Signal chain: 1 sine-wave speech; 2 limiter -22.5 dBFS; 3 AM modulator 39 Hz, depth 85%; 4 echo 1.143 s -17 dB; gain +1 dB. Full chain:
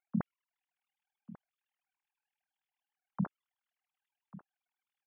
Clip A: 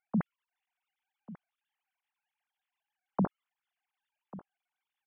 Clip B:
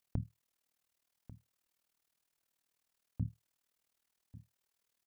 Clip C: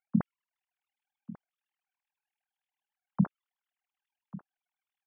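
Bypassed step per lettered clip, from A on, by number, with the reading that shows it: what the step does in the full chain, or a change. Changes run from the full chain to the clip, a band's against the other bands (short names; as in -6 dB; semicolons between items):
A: 3, crest factor change -4.0 dB; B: 1, crest factor change +3.5 dB; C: 2, mean gain reduction 4.5 dB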